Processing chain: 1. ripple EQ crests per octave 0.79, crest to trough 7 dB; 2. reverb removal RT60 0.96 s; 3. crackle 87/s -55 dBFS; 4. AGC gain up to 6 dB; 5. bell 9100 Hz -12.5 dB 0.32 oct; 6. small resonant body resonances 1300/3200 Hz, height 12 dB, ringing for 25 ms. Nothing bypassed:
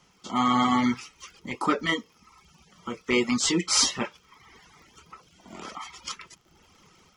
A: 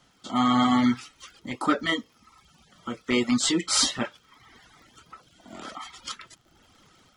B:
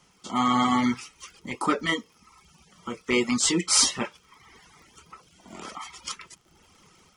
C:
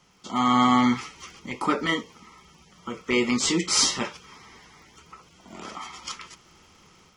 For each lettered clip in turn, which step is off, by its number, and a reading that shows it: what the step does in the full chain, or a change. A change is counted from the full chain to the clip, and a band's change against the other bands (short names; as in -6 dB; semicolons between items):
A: 1, 250 Hz band +3.0 dB; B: 5, 8 kHz band +3.0 dB; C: 2, loudness change +2.0 LU